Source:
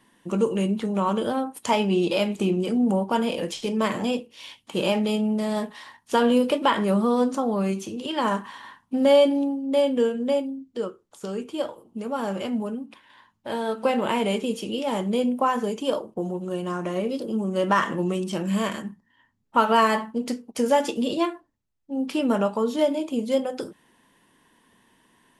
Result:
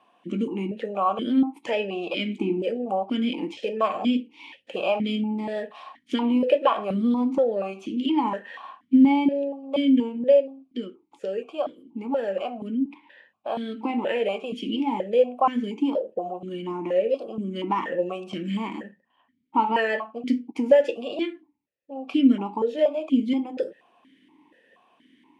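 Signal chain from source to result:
in parallel at −1.5 dB: downward compressor, threshold −31 dBFS, peak gain reduction 16.5 dB
on the sum: formant filter that steps through the vowels 4.2 Hz
level +8.5 dB

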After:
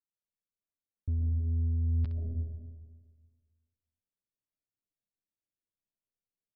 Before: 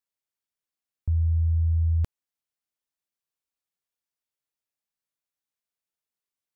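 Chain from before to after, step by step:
ambience of single reflections 10 ms −9 dB, 66 ms −16 dB
low-pass that shuts in the quiet parts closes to 380 Hz
soft clipping −24.5 dBFS, distortion −15 dB
parametric band 560 Hz −7 dB 2.3 octaves
downsampling to 11,025 Hz
on a send at −2 dB: drawn EQ curve 130 Hz 0 dB, 660 Hz +10 dB, 950 Hz −23 dB + convolution reverb RT60 1.6 s, pre-delay 89 ms
on the sum: speech leveller within 3 dB 0.5 s
level −2 dB

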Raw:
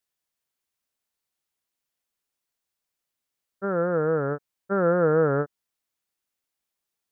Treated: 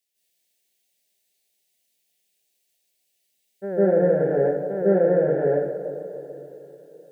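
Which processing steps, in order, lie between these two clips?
low-shelf EQ 420 Hz −10.5 dB
brickwall limiter −21.5 dBFS, peak gain reduction 7 dB
Butterworth band-reject 1,200 Hz, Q 0.88
tape delay 148 ms, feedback 85%, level −12 dB, low-pass 1,400 Hz
convolution reverb, pre-delay 143 ms, DRR −8 dB
level +4.5 dB

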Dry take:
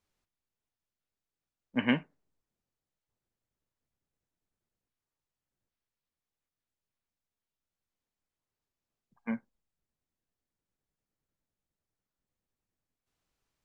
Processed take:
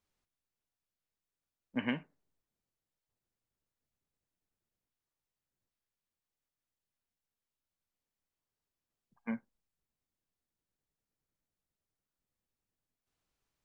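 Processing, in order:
downward compressor 5 to 1, threshold −27 dBFS, peak gain reduction 6 dB
level −2.5 dB

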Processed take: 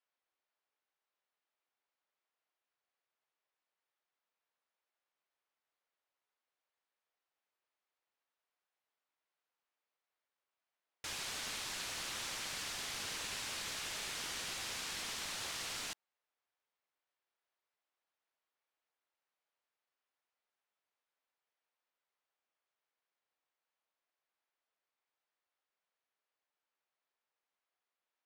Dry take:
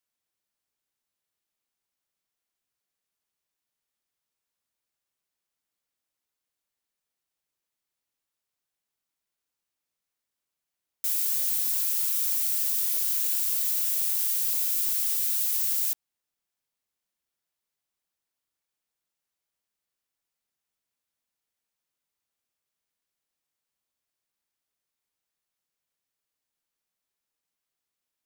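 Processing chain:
high-pass filter 560 Hz
leveller curve on the samples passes 1
head-to-tape spacing loss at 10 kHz 29 dB
level +7.5 dB

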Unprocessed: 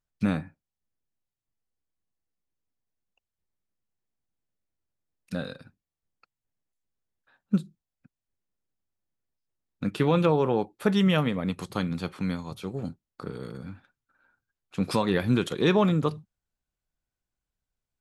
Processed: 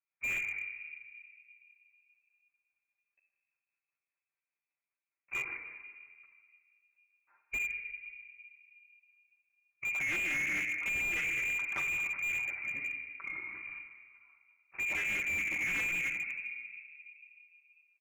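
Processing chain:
elliptic high-pass filter 170 Hz, stop band 60 dB
decimation without filtering 16×
soft clipping −22 dBFS, distortion −11 dB
echo with shifted repeats 80 ms, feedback 47%, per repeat +120 Hz, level −14 dB
flanger swept by the level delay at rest 11.5 ms, full sweep at −27 dBFS
rotating-speaker cabinet horn 5 Hz
rectangular room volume 2,500 cubic metres, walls mixed, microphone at 1.3 metres
voice inversion scrambler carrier 2,600 Hz
slew-rate limiting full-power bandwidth 59 Hz

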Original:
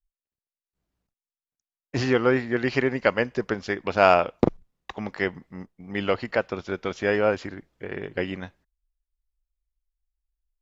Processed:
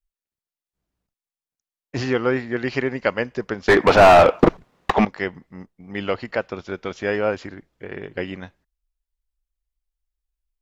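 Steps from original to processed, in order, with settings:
0:03.68–0:05.05: mid-hump overdrive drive 36 dB, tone 1,100 Hz, clips at −1 dBFS

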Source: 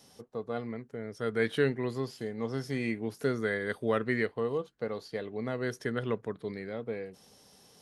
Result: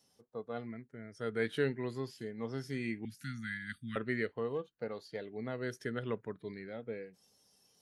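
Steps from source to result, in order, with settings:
0:04.55–0:05.32: phase distortion by the signal itself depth 0.053 ms
noise reduction from a noise print of the clip's start 10 dB
0:03.05–0:03.96: inverse Chebyshev band-stop filter 400–880 Hz, stop band 50 dB
level −5 dB

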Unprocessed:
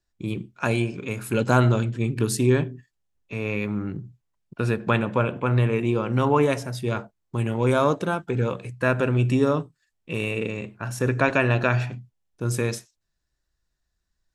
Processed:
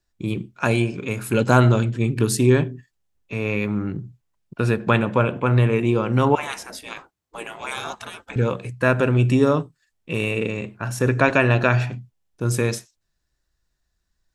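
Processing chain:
0:06.35–0:08.36: gate on every frequency bin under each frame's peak −15 dB weak
level +3.5 dB

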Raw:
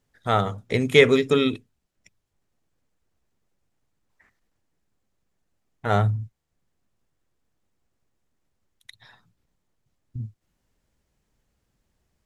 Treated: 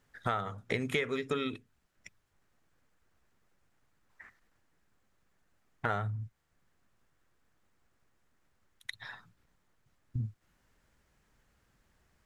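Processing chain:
parametric band 1,500 Hz +8 dB 1.4 octaves
downward compressor 8 to 1, threshold −31 dBFS, peak gain reduction 23 dB
level +1 dB

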